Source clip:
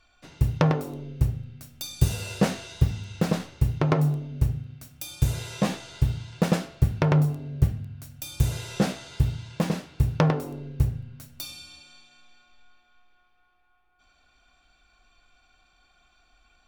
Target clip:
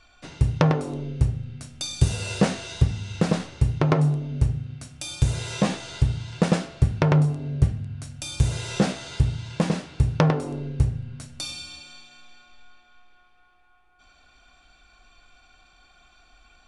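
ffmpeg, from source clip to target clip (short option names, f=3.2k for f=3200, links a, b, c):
-filter_complex "[0:a]asplit=2[a][b];[b]acompressor=threshold=-32dB:ratio=6,volume=1dB[c];[a][c]amix=inputs=2:normalize=0,aresample=22050,aresample=44100"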